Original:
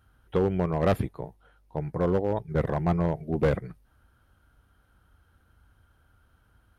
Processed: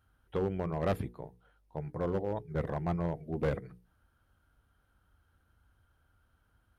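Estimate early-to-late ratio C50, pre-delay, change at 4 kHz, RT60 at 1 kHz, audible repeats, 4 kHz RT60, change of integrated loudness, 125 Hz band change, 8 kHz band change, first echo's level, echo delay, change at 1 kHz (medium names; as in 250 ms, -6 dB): no reverb, no reverb, -7.0 dB, no reverb, no echo, no reverb, -7.5 dB, -7.5 dB, no reading, no echo, no echo, -7.0 dB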